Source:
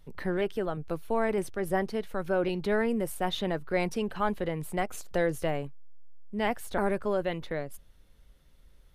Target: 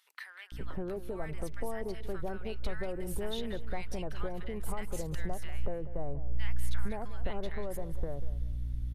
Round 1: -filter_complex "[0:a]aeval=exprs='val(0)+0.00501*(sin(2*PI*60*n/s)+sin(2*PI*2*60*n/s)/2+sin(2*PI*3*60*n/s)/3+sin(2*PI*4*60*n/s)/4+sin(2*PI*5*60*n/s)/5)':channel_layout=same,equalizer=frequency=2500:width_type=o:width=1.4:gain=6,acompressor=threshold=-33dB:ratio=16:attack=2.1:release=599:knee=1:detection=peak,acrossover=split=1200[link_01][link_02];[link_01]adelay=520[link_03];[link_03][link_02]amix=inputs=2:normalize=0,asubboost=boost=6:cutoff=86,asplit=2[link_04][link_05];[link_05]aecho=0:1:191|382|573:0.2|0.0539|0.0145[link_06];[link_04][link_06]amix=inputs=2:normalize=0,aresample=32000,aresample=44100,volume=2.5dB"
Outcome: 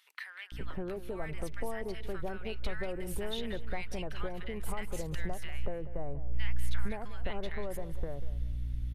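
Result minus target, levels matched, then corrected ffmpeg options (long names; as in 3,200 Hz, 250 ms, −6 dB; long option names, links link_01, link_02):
2,000 Hz band +3.0 dB
-filter_complex "[0:a]aeval=exprs='val(0)+0.00501*(sin(2*PI*60*n/s)+sin(2*PI*2*60*n/s)/2+sin(2*PI*3*60*n/s)/3+sin(2*PI*4*60*n/s)/4+sin(2*PI*5*60*n/s)/5)':channel_layout=same,acompressor=threshold=-33dB:ratio=16:attack=2.1:release=599:knee=1:detection=peak,acrossover=split=1200[link_01][link_02];[link_01]adelay=520[link_03];[link_03][link_02]amix=inputs=2:normalize=0,asubboost=boost=6:cutoff=86,asplit=2[link_04][link_05];[link_05]aecho=0:1:191|382|573:0.2|0.0539|0.0145[link_06];[link_04][link_06]amix=inputs=2:normalize=0,aresample=32000,aresample=44100,volume=2.5dB"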